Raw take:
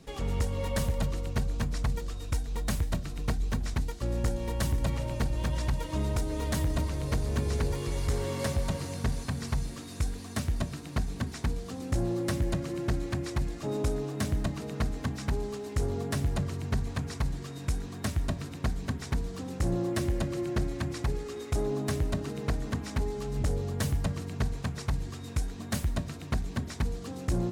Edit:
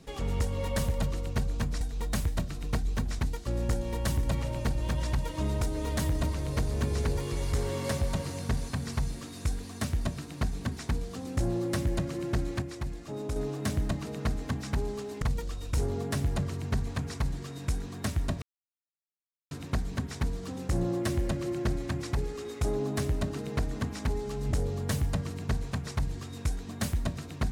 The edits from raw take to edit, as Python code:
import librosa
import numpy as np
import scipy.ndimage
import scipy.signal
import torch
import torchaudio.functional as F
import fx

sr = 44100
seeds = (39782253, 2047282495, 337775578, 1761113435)

y = fx.edit(x, sr, fx.move(start_s=1.81, length_s=0.55, to_s=15.77),
    fx.clip_gain(start_s=13.17, length_s=0.74, db=-5.0),
    fx.insert_silence(at_s=18.42, length_s=1.09), tone=tone)